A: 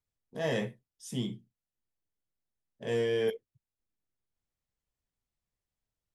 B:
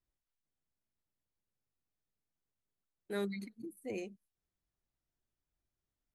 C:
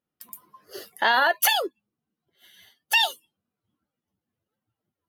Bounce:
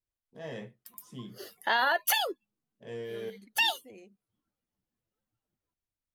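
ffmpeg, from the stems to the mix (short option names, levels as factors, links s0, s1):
-filter_complex "[0:a]highshelf=f=8300:g=-10.5,volume=0.335[s0];[1:a]acompressor=threshold=0.00794:ratio=2,volume=0.422[s1];[2:a]adelay=650,volume=0.501[s2];[s0][s1][s2]amix=inputs=3:normalize=0"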